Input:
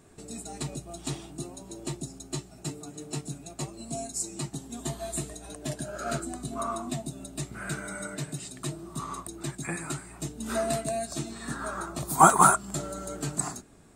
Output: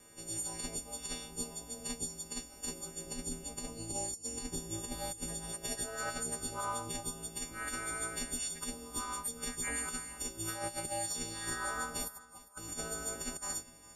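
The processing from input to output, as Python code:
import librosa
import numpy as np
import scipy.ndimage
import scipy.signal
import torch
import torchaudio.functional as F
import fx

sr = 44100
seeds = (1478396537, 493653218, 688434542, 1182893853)

y = fx.freq_snap(x, sr, grid_st=4)
y = fx.low_shelf(y, sr, hz=390.0, db=7.0, at=(3.06, 5.52))
y = fx.over_compress(y, sr, threshold_db=-28.0, ratio=-0.5)
y = y * np.sin(2.0 * np.pi * 110.0 * np.arange(len(y)) / sr)
y = fx.echo_feedback(y, sr, ms=402, feedback_pct=24, wet_db=-19.5)
y = y * 10.0 ** (-8.0 / 20.0)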